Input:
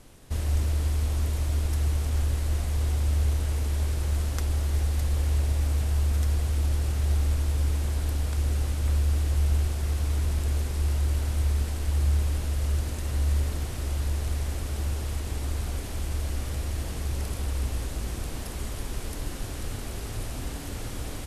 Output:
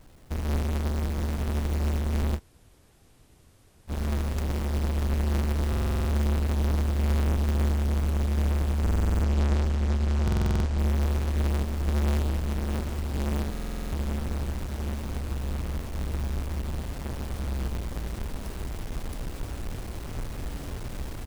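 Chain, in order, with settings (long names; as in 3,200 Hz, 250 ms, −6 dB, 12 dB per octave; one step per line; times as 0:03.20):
each half-wave held at its own peak
0:08.87–0:10.79: low-pass filter 8,100 Hz 24 dB per octave
repeating echo 823 ms, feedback 57%, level −12 dB
0:02.37–0:03.90: fill with room tone, crossfade 0.06 s
buffer that repeats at 0:05.68/0:08.82/0:10.23/0:13.51, samples 2,048, times 8
level −6.5 dB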